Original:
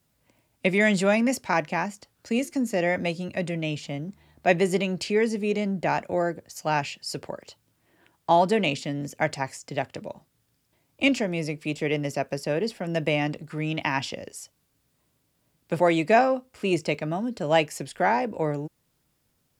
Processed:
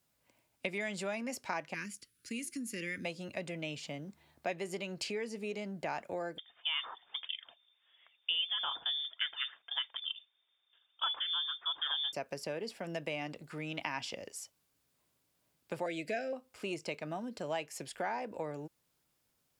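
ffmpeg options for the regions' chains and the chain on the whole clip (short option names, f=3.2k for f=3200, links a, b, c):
-filter_complex "[0:a]asettb=1/sr,asplit=3[a][b][c];[a]atrim=end=1.744[d];[b]atrim=start=1.74:end=3.05,asetpts=PTS-STARTPTS,afade=t=in:d=0.004:c=qsin,afade=t=out:st=1.306:d=0.004:c=qsin,asuperstop=centerf=750:order=4:qfactor=0.6,equalizer=f=10k:w=5.3:g=14[e];[c]atrim=start=3.046[f];[d][e]acrossfade=d=0.004:c1=hsin:c2=qsin[g];[g][f]acrossfade=d=0.004:c1=qsin:c2=hsin,asettb=1/sr,asplit=3[h][i][j];[h]atrim=end=6.384[k];[i]atrim=start=6.38:end=12.13,asetpts=PTS-STARTPTS,afade=t=in:d=0.004:c=qsin,afade=t=out:st=5.746:d=0.004:c=qsin,aphaser=in_gain=1:out_gain=1:delay=3:decay=0.4:speed=1.6:type=sinusoidal,lowpass=f=3.1k:t=q:w=0.5098,lowpass=f=3.1k:t=q:w=0.6013,lowpass=f=3.1k:t=q:w=0.9,lowpass=f=3.1k:t=q:w=2.563,afreqshift=-3700[l];[j]atrim=start=12.126[m];[k][l]acrossfade=d=0.004:c1=hsin:c2=qsin[n];[n][m]acrossfade=d=0.004:c1=qsin:c2=hsin,asettb=1/sr,asplit=3[o][p][q];[o]atrim=end=15.864[r];[p]atrim=start=15.86:end=16.33,asetpts=PTS-STARTPTS,afade=t=in:d=0.004:c=qsin,afade=t=out:st=0.466:d=0.004:c=qsin,asuperstop=centerf=1000:order=8:qfactor=1.3,acompressor=mode=upward:threshold=-25dB:ratio=2.5:attack=3.2:release=140:knee=2.83:detection=peak[s];[q]atrim=start=16.326[t];[r][s]acrossfade=d=0.004:c1=hsin:c2=qsin[u];[u][t]acrossfade=d=0.004:c1=qsin:c2=hsin,acompressor=threshold=-28dB:ratio=4,lowshelf=f=320:g=-9,bandreject=f=1.9k:w=30,volume=-4.5dB"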